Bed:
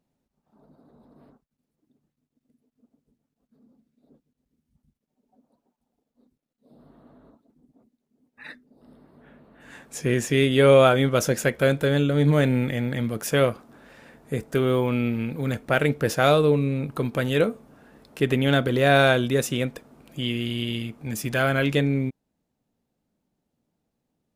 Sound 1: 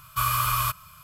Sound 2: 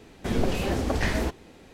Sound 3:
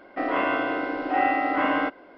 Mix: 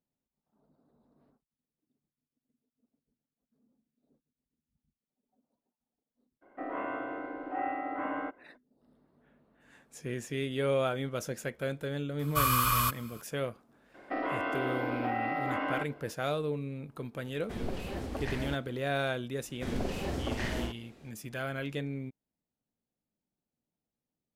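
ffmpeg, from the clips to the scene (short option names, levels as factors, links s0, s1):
-filter_complex "[3:a]asplit=2[s0][s1];[2:a]asplit=2[s2][s3];[0:a]volume=0.2[s4];[s0]lowpass=1700[s5];[s1]acompressor=threshold=0.0631:ratio=6:attack=3.2:release=140:knee=1:detection=peak[s6];[s2]equalizer=f=6300:t=o:w=0.72:g=-4[s7];[s3]asplit=2[s8][s9];[s9]adelay=46,volume=0.75[s10];[s8][s10]amix=inputs=2:normalize=0[s11];[s5]atrim=end=2.17,asetpts=PTS-STARTPTS,volume=0.282,afade=t=in:d=0.02,afade=t=out:st=2.15:d=0.02,adelay=6410[s12];[1:a]atrim=end=1.03,asetpts=PTS-STARTPTS,volume=0.75,afade=t=in:d=0.004:c=hsin,afade=t=out:st=1.026:d=0.004:c=hsin,adelay=12190[s13];[s6]atrim=end=2.17,asetpts=PTS-STARTPTS,volume=0.596,afade=t=in:d=0.004:c=hsin,afade=t=out:st=2.166:d=0.004:c=hsin,adelay=13940[s14];[s7]atrim=end=1.73,asetpts=PTS-STARTPTS,volume=0.282,afade=t=in:d=0.004:c=hsin,afade=t=out:st=1.726:d=0.004:c=hsin,adelay=17250[s15];[s11]atrim=end=1.73,asetpts=PTS-STARTPTS,volume=0.316,afade=t=in:d=0.004:c=hsin,afade=t=out:st=1.726:d=0.004:c=hsin,adelay=19370[s16];[s4][s12][s13][s14][s15][s16]amix=inputs=6:normalize=0"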